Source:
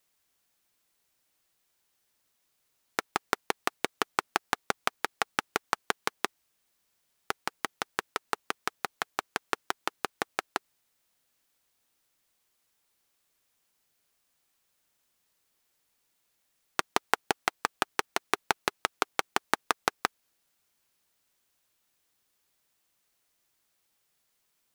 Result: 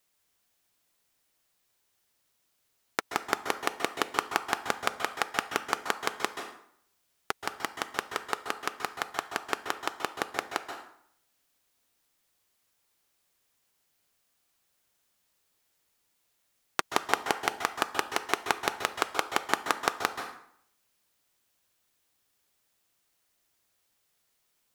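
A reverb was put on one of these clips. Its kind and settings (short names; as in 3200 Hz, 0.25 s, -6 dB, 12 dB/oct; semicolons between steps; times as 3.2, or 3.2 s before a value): plate-style reverb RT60 0.66 s, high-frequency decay 0.75×, pre-delay 0.12 s, DRR 6 dB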